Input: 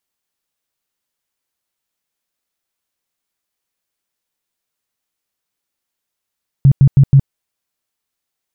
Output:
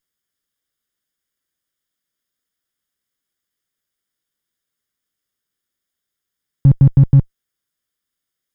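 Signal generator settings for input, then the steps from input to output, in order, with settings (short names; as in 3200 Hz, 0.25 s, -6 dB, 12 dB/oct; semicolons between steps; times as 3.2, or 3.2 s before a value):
tone bursts 137 Hz, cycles 9, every 0.16 s, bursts 4, -3.5 dBFS
minimum comb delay 0.58 ms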